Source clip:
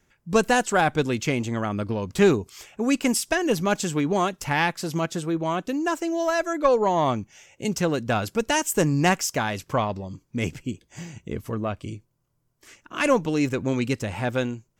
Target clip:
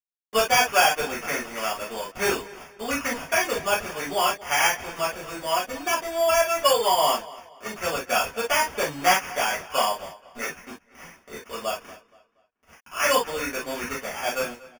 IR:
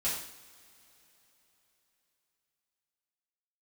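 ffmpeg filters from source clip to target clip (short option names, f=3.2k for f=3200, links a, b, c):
-filter_complex "[0:a]highpass=660,acrusher=bits=6:mix=0:aa=0.000001,highshelf=f=10k:g=-10,acrossover=split=4500[a][b];[b]acompressor=threshold=-56dB:ratio=4:attack=1:release=60[c];[a][c]amix=inputs=2:normalize=0,acrusher=samples=11:mix=1:aa=0.000001,asplit=2[d][e];[e]adelay=237,lowpass=f=4.8k:p=1,volume=-19dB,asplit=2[f][g];[g]adelay=237,lowpass=f=4.8k:p=1,volume=0.36,asplit=2[h][i];[i]adelay=237,lowpass=f=4.8k:p=1,volume=0.36[j];[d][f][h][j]amix=inputs=4:normalize=0[k];[1:a]atrim=start_sample=2205,atrim=end_sample=3087[l];[k][l]afir=irnorm=-1:irlink=0"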